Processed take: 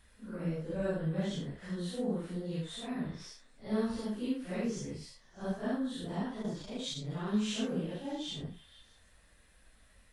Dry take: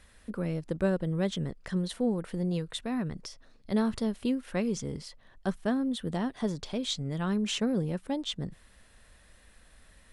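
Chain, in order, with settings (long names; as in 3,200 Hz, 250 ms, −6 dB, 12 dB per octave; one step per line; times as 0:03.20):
random phases in long frames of 200 ms
echo through a band-pass that steps 155 ms, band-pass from 1,300 Hz, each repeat 0.7 octaves, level −11.5 dB
0:06.40–0:07.34: saturating transformer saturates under 280 Hz
level −5 dB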